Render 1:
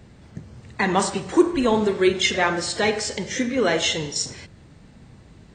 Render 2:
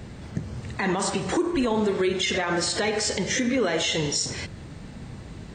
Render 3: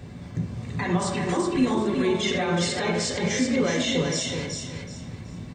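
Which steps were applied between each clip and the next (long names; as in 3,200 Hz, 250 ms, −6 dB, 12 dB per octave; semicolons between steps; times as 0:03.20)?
downward compressor 2 to 1, threshold −31 dBFS, peak gain reduction 11.5 dB; brickwall limiter −23.5 dBFS, peak gain reduction 9.5 dB; level +8 dB
bit-depth reduction 12 bits, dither none; repeating echo 376 ms, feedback 28%, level −5 dB; on a send at −1.5 dB: convolution reverb RT60 0.40 s, pre-delay 3 ms; on the sum: level −4.5 dB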